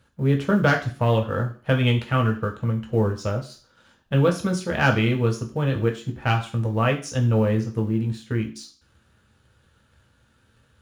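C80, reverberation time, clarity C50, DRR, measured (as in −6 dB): 16.0 dB, 0.40 s, 12.0 dB, 1.5 dB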